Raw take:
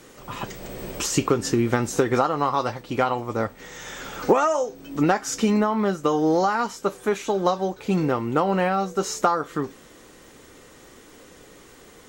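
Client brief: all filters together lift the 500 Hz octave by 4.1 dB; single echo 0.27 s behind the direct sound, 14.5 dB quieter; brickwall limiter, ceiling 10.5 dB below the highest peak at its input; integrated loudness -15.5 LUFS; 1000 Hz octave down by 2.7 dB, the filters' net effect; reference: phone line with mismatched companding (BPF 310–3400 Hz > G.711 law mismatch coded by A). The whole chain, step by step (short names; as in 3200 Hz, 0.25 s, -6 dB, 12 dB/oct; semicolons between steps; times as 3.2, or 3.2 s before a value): bell 500 Hz +7.5 dB; bell 1000 Hz -6.5 dB; limiter -12.5 dBFS; BPF 310–3400 Hz; echo 0.27 s -14.5 dB; G.711 law mismatch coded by A; gain +10 dB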